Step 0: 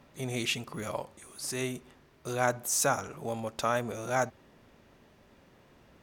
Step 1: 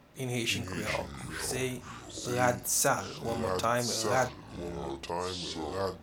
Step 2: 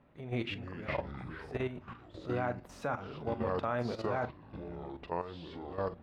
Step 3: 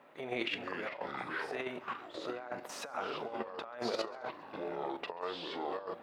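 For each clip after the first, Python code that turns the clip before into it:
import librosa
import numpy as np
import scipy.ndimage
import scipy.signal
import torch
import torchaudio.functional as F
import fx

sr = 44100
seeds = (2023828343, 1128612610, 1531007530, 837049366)

y1 = fx.peak_eq(x, sr, hz=15000.0, db=4.0, octaves=0.24)
y1 = fx.echo_pitch(y1, sr, ms=242, semitones=-5, count=3, db_per_echo=-6.0)
y1 = fx.doubler(y1, sr, ms=41.0, db=-11.0)
y2 = fx.high_shelf(y1, sr, hz=9700.0, db=-5.0)
y2 = fx.level_steps(y2, sr, step_db=11)
y2 = fx.air_absorb(y2, sr, metres=430.0)
y2 = y2 * 10.0 ** (2.0 / 20.0)
y3 = scipy.signal.sosfilt(scipy.signal.butter(2, 480.0, 'highpass', fs=sr, output='sos'), y2)
y3 = fx.over_compress(y3, sr, threshold_db=-42.0, ratio=-0.5)
y3 = fx.echo_feedback(y3, sr, ms=135, feedback_pct=56, wet_db=-23)
y3 = y3 * 10.0 ** (5.5 / 20.0)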